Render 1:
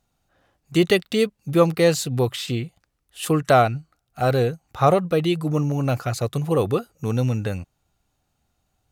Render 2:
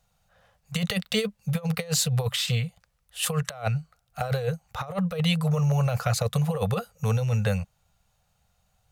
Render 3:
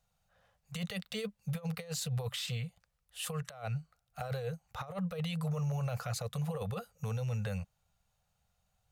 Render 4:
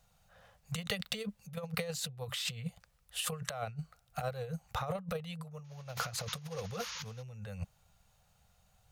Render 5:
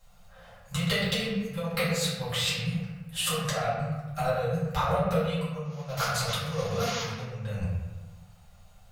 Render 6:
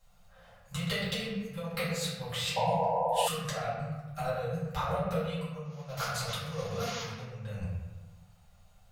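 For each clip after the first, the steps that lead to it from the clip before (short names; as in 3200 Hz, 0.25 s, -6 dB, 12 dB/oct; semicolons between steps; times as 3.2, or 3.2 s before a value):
Chebyshev band-stop 200–470 Hz, order 3; negative-ratio compressor -24 dBFS, ratio -0.5
limiter -19.5 dBFS, peak gain reduction 8 dB; gain -8.5 dB
painted sound noise, 5.64–7.23, 860–6900 Hz -52 dBFS; negative-ratio compressor -41 dBFS, ratio -0.5; gain +3 dB
reverb RT60 1.2 s, pre-delay 3 ms, DRR -10 dB
painted sound noise, 2.56–3.28, 460–1000 Hz -23 dBFS; gain -5.5 dB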